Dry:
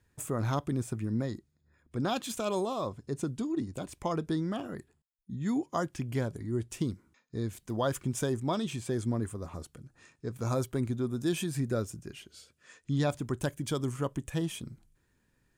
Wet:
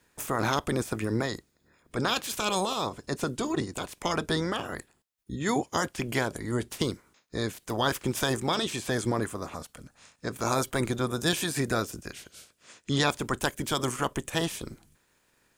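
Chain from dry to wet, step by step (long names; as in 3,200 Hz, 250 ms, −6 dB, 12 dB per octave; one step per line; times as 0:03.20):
ceiling on every frequency bin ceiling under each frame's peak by 19 dB
0:09.54–0:10.25: parametric band 360 Hz −12.5 dB 0.4 octaves
level +3.5 dB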